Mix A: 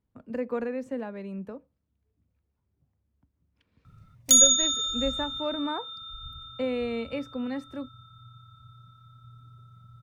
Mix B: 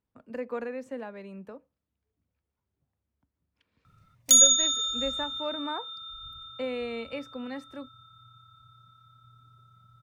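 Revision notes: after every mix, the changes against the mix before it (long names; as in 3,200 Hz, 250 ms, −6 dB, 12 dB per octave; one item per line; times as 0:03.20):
master: add low-shelf EQ 340 Hz −9.5 dB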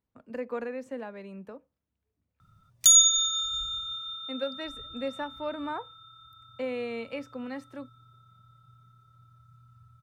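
background: entry −1.45 s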